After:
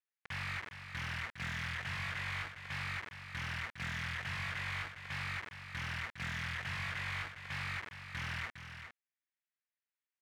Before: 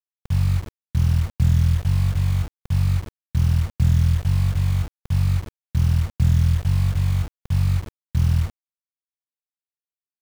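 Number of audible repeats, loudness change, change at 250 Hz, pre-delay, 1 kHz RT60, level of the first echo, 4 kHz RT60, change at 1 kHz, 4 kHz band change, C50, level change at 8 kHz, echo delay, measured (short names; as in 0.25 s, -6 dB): 1, -18.0 dB, -21.5 dB, none, none, -9.0 dB, none, -2.5 dB, -3.5 dB, none, n/a, 0.408 s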